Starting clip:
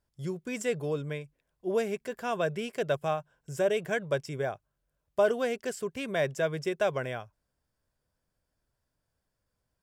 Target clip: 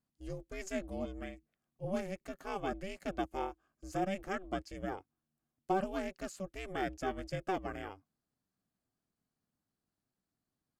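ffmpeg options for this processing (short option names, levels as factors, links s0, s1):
-af "asetrate=40131,aresample=44100,aeval=exprs='val(0)*sin(2*PI*190*n/s)':c=same,volume=0.562"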